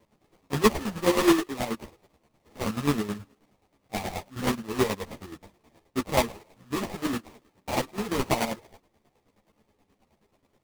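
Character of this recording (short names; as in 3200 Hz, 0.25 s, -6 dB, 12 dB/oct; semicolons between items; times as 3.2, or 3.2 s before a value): chopped level 9.4 Hz, depth 65%, duty 35%; aliases and images of a low sample rate 1500 Hz, jitter 20%; a shimmering, thickened sound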